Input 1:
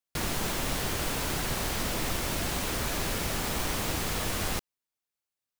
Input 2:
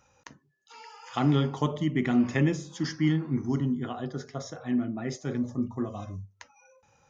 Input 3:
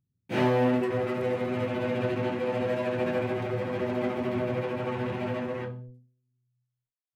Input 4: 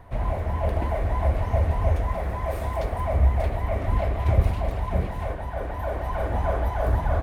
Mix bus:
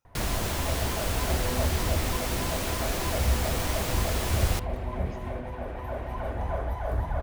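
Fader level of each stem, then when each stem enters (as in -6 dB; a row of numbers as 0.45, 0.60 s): -0.5, -19.5, -12.5, -6.0 dB; 0.00, 0.00, 0.90, 0.05 s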